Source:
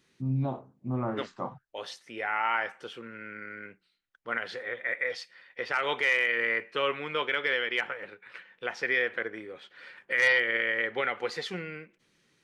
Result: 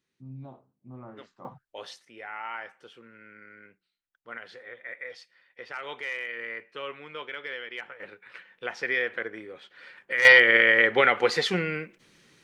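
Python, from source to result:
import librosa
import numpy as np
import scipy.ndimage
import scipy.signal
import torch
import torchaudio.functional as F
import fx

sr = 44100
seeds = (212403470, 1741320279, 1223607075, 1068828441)

y = fx.gain(x, sr, db=fx.steps((0.0, -13.5), (1.45, -2.0), (2.05, -8.5), (8.0, 0.0), (10.25, 9.5)))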